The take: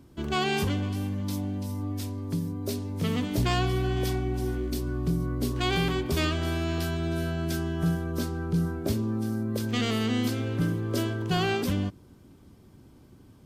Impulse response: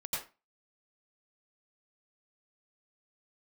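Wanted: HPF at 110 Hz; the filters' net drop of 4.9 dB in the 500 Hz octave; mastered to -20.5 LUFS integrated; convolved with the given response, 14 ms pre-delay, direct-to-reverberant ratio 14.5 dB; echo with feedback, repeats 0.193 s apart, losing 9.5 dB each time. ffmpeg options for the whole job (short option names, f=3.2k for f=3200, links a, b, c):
-filter_complex "[0:a]highpass=110,equalizer=f=500:t=o:g=-7.5,aecho=1:1:193|386|579|772:0.335|0.111|0.0365|0.012,asplit=2[a][b];[1:a]atrim=start_sample=2205,adelay=14[c];[b][c]afir=irnorm=-1:irlink=0,volume=-17dB[d];[a][d]amix=inputs=2:normalize=0,volume=10dB"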